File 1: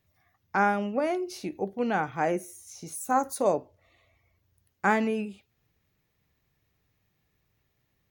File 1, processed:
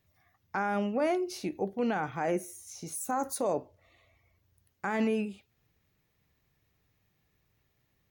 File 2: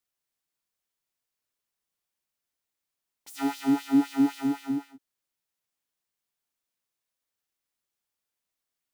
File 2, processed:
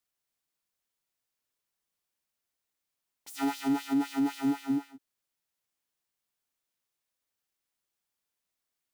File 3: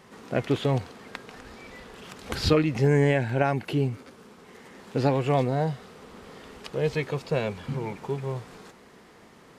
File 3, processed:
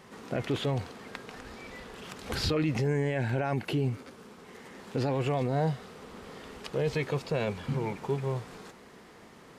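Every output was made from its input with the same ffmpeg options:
ffmpeg -i in.wav -af "alimiter=limit=-20.5dB:level=0:latency=1:release=14" out.wav

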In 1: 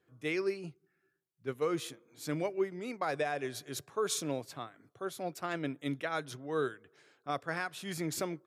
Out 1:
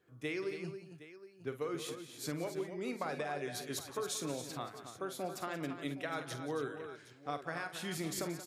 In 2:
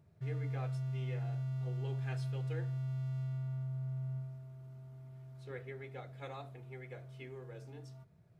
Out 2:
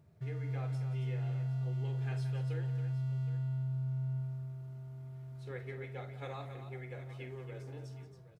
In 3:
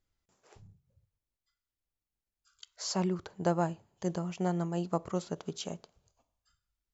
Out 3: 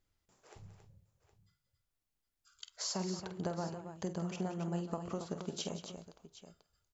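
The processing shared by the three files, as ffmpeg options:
ffmpeg -i in.wav -filter_complex "[0:a]acompressor=threshold=-37dB:ratio=6,asplit=2[link_01][link_02];[link_02]aecho=0:1:48|178|275|766:0.299|0.224|0.335|0.168[link_03];[link_01][link_03]amix=inputs=2:normalize=0,volume=1.5dB" out.wav

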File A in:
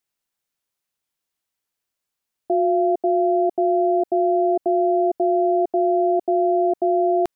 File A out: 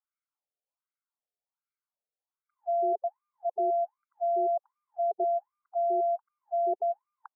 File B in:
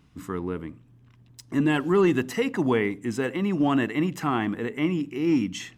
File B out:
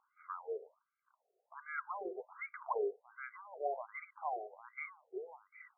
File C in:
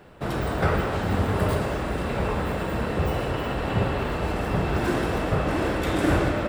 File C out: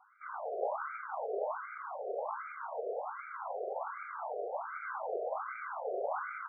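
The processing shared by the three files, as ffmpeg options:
ffmpeg -i in.wav -af "asuperstop=centerf=1800:order=4:qfactor=3.9,afftfilt=real='re*between(b*sr/1024,520*pow(1700/520,0.5+0.5*sin(2*PI*1.3*pts/sr))/1.41,520*pow(1700/520,0.5+0.5*sin(2*PI*1.3*pts/sr))*1.41)':imag='im*between(b*sr/1024,520*pow(1700/520,0.5+0.5*sin(2*PI*1.3*pts/sr))/1.41,520*pow(1700/520,0.5+0.5*sin(2*PI*1.3*pts/sr))*1.41)':win_size=1024:overlap=0.75,volume=-5dB" out.wav

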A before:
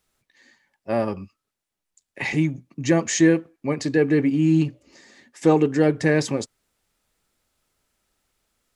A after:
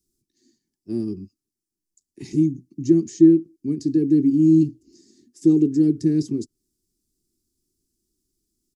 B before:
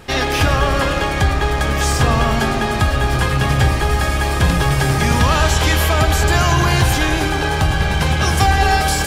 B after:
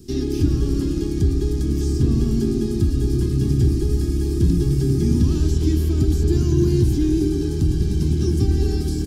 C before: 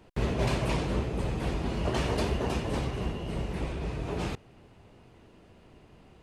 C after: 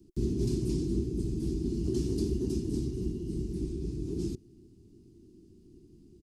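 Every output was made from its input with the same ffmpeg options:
ffmpeg -i in.wav -filter_complex "[0:a]firequalizer=gain_entry='entry(140,0);entry(360,8);entry(530,-28);entry(2000,-26);entry(5000,0)':delay=0.05:min_phase=1,acrossover=split=280|3200[link_01][link_02][link_03];[link_03]acompressor=threshold=-42dB:ratio=4[link_04];[link_01][link_02][link_04]amix=inputs=3:normalize=0,volume=-2dB" out.wav

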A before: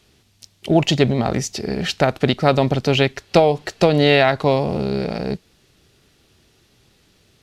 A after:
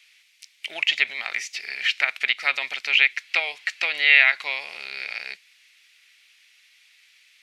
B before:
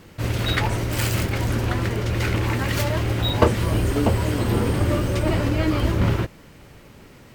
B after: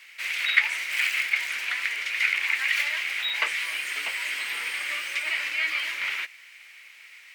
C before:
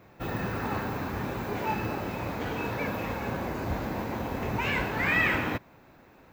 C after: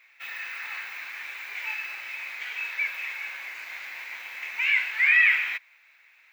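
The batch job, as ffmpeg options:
ffmpeg -i in.wav -filter_complex "[0:a]highpass=frequency=2200:width_type=q:width=4.4,acrossover=split=3300[link_01][link_02];[link_02]acompressor=threshold=-33dB:ratio=4:attack=1:release=60[link_03];[link_01][link_03]amix=inputs=2:normalize=0,equalizer=frequency=14000:width=7.1:gain=-11.5,volume=-1dB" out.wav

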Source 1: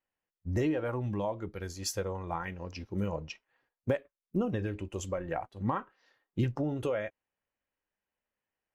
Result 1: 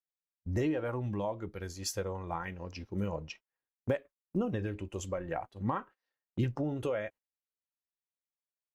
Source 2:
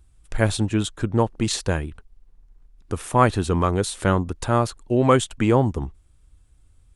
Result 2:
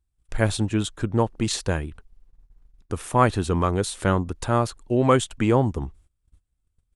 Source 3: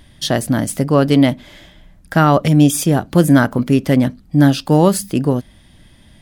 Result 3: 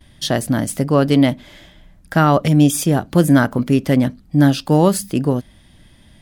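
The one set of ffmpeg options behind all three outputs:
ffmpeg -i in.wav -af "agate=range=-19dB:threshold=-49dB:ratio=16:detection=peak,volume=-1.5dB" out.wav

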